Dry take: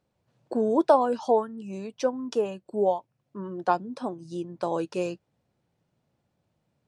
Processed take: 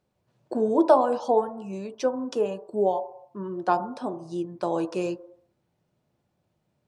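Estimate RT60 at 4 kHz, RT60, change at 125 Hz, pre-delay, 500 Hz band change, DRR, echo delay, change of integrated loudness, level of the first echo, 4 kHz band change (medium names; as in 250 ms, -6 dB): 0.70 s, 0.70 s, +0.5 dB, 3 ms, +1.0 dB, 9.5 dB, no echo, +1.0 dB, no echo, 0.0 dB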